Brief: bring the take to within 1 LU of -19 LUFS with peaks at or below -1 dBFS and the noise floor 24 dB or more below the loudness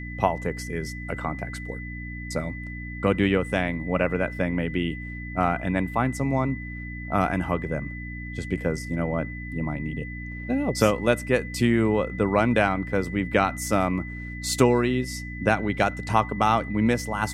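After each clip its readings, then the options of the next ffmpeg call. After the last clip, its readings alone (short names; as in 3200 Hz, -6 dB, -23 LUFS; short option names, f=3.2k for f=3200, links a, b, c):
hum 60 Hz; harmonics up to 300 Hz; hum level -34 dBFS; steady tone 2000 Hz; tone level -38 dBFS; loudness -25.5 LUFS; peak -4.5 dBFS; loudness target -19.0 LUFS
-> -af "bandreject=f=60:t=h:w=4,bandreject=f=120:t=h:w=4,bandreject=f=180:t=h:w=4,bandreject=f=240:t=h:w=4,bandreject=f=300:t=h:w=4"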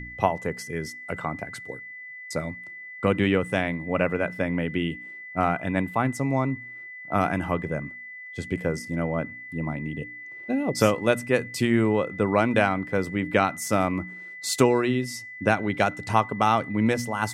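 hum none; steady tone 2000 Hz; tone level -38 dBFS
-> -af "bandreject=f=2k:w=30"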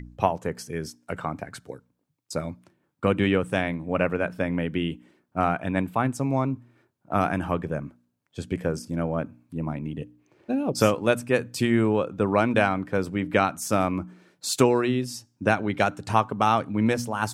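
steady tone none; loudness -26.0 LUFS; peak -4.5 dBFS; loudness target -19.0 LUFS
-> -af "volume=7dB,alimiter=limit=-1dB:level=0:latency=1"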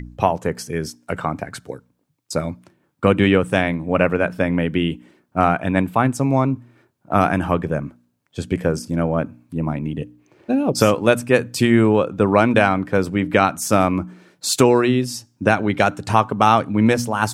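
loudness -19.0 LUFS; peak -1.0 dBFS; noise floor -67 dBFS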